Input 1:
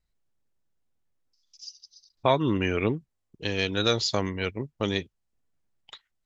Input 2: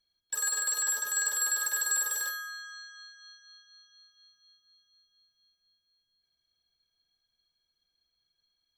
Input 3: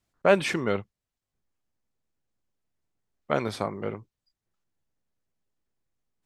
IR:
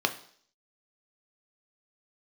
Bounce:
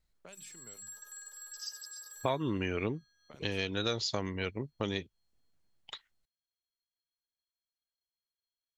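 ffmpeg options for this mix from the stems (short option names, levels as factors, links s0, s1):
-filter_complex "[0:a]volume=1.12[s0];[1:a]equalizer=f=6800:t=o:w=0.26:g=10.5,volume=0.112[s1];[2:a]highshelf=f=4700:g=11,bandreject=f=50:t=h:w=6,bandreject=f=100:t=h:w=6,bandreject=f=150:t=h:w=6,bandreject=f=200:t=h:w=6,volume=0.119[s2];[s1][s2]amix=inputs=2:normalize=0,acrossover=split=150|3000[s3][s4][s5];[s4]acompressor=threshold=0.00282:ratio=6[s6];[s3][s6][s5]amix=inputs=3:normalize=0,alimiter=level_in=5.62:limit=0.0631:level=0:latency=1:release=406,volume=0.178,volume=1[s7];[s0][s7]amix=inputs=2:normalize=0,acompressor=threshold=0.0158:ratio=2"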